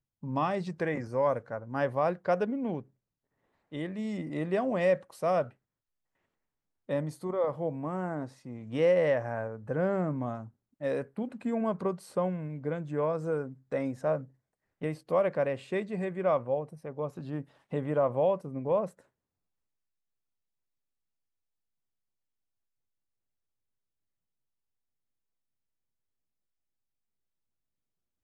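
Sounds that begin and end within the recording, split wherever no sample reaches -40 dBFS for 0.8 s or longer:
3.73–5.48
6.89–18.89

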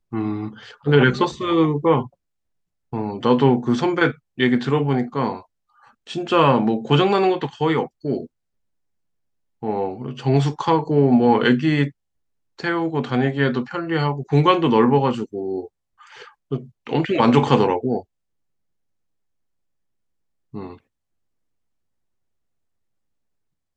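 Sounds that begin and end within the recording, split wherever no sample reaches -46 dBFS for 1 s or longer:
9.62–18.03
20.53–20.79

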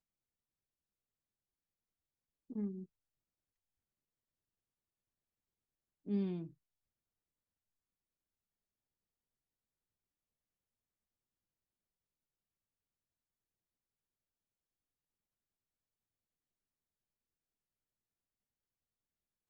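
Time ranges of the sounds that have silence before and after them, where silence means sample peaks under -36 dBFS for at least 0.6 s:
2.56–2.68
6.09–6.39

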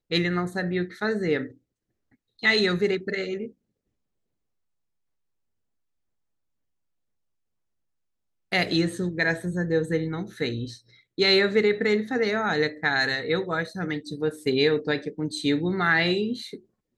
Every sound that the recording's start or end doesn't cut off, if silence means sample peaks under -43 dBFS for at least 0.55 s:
2.39–3.5

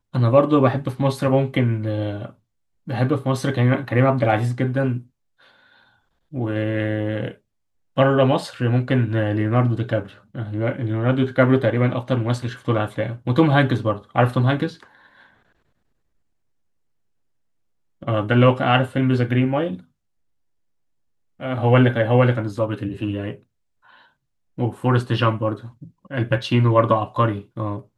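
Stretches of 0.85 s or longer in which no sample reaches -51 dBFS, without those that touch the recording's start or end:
15.42–18.02
19.85–21.39

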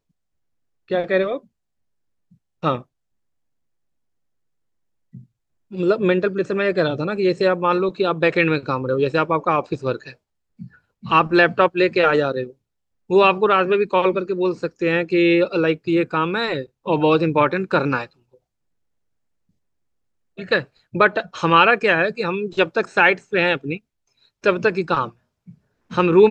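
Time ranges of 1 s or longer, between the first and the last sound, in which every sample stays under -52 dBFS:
2.84–5.13
18.37–20.37

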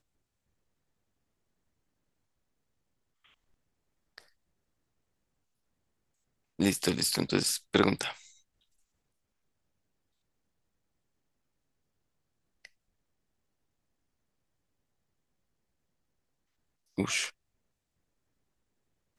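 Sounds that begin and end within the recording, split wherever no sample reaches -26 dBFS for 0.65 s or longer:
6.6–8.08
16.99–17.24

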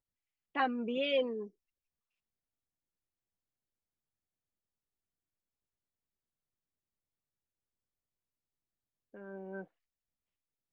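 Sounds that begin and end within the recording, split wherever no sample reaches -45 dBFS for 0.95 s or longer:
9.14–9.64

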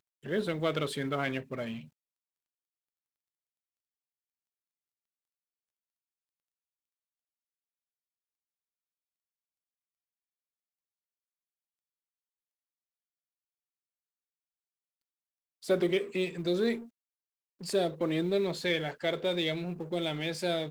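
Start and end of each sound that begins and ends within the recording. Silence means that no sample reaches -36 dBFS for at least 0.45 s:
15.69–16.78

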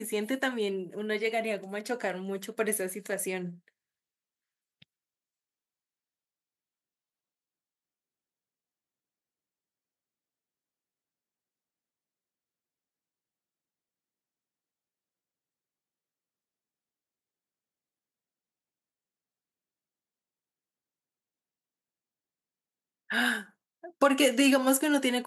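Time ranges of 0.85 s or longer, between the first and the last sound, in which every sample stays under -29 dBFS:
3.44–23.11

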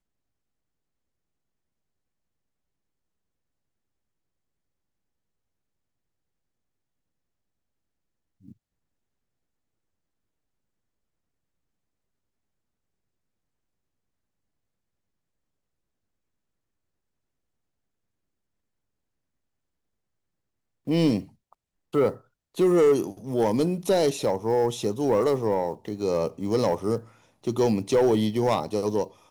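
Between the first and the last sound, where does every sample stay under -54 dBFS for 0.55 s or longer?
8.53–20.87

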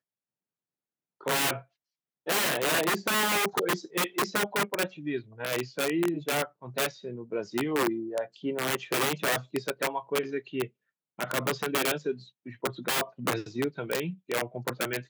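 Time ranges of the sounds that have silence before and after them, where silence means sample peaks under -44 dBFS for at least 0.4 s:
1.21–1.61
2.26–10.67

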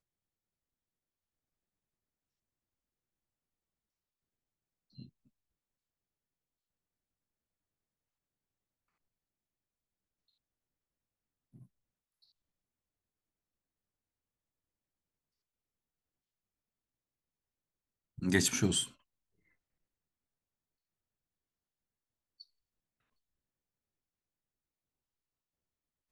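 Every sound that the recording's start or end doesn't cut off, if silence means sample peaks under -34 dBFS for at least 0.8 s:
18.22–18.84

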